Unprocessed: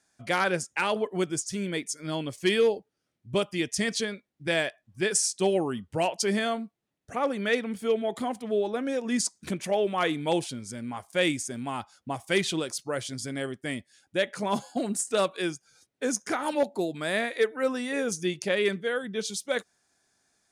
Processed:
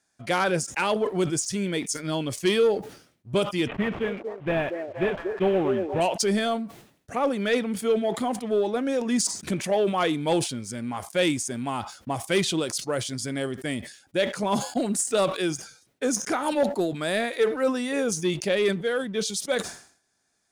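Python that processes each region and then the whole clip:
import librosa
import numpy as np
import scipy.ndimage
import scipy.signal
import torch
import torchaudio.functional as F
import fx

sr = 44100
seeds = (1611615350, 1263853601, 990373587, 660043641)

y = fx.chain(x, sr, fx.cvsd(bps=16000),
    fx.echo_stepped(ms=234, hz=450.0, octaves=0.7, feedback_pct=70, wet_db=-4.5), at=(3.67, 6.01))
y = fx.dynamic_eq(y, sr, hz=1900.0, q=1.6, threshold_db=-41.0, ratio=4.0, max_db=-4)
y = fx.leveller(y, sr, passes=1)
y = fx.sustainer(y, sr, db_per_s=110.0)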